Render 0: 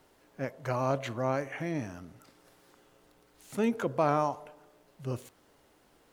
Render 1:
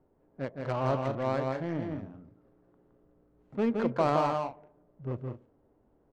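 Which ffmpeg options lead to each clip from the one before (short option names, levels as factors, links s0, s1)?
-af "adynamicsmooth=sensitivity=3:basefreq=580,aecho=1:1:166.2|204.1:0.631|0.251"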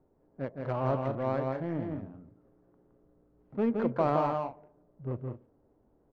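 -af "lowpass=f=1500:p=1"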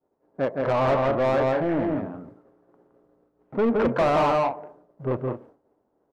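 -filter_complex "[0:a]asplit=2[s0][s1];[s1]highpass=f=720:p=1,volume=22.4,asoftclip=type=tanh:threshold=0.237[s2];[s0][s2]amix=inputs=2:normalize=0,lowpass=f=1700:p=1,volume=0.501,agate=range=0.0224:threshold=0.00708:ratio=3:detection=peak"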